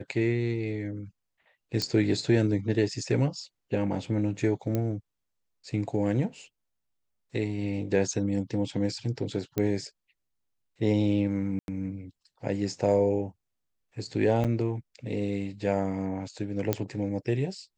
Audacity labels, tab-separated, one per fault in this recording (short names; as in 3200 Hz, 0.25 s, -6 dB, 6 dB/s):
1.820000	1.820000	pop -15 dBFS
4.750000	4.750000	pop -16 dBFS
9.580000	9.580000	pop -15 dBFS
11.590000	11.680000	gap 91 ms
14.440000	14.450000	gap 7.4 ms
16.730000	16.730000	pop -10 dBFS